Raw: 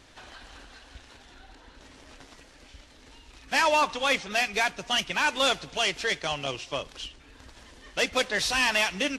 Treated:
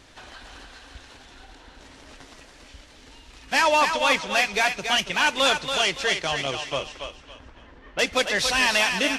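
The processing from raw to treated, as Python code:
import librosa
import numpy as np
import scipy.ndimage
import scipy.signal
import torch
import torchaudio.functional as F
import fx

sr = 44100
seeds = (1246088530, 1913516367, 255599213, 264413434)

y = fx.lowpass(x, sr, hz=1800.0, slope=12, at=(6.88, 7.99))
y = fx.echo_thinned(y, sr, ms=281, feedback_pct=30, hz=420.0, wet_db=-6.0)
y = y * librosa.db_to_amplitude(3.0)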